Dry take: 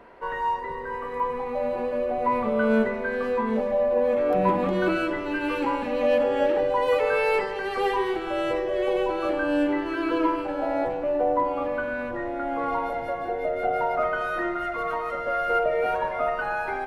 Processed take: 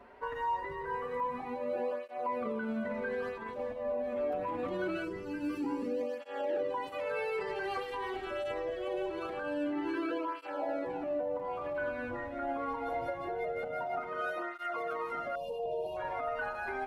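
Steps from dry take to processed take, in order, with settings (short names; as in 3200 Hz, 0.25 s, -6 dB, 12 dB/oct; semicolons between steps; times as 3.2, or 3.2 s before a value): 5.05–6.21 spectral gain 500–4300 Hz -11 dB; limiter -22.5 dBFS, peak gain reduction 11.5 dB; 15.35–15.97 brick-wall FIR band-stop 1100–2400 Hz; tape flanging out of phase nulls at 0.24 Hz, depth 6.4 ms; gain -2.5 dB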